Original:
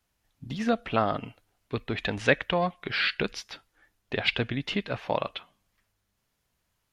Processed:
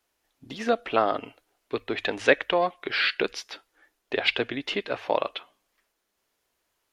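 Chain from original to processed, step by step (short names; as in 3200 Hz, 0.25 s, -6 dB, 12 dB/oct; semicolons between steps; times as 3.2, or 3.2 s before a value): resonant low shelf 240 Hz -11 dB, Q 1.5; notches 50/100 Hz; gain +2 dB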